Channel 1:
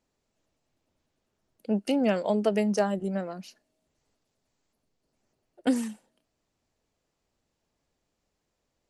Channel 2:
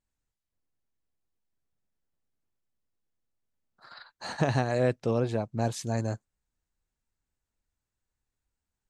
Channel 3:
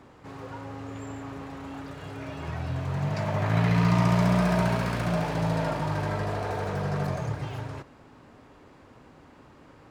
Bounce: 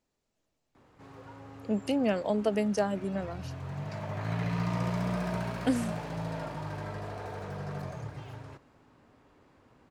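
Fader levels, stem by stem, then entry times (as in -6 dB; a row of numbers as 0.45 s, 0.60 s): -3.0 dB, -19.0 dB, -9.0 dB; 0.00 s, 0.00 s, 0.75 s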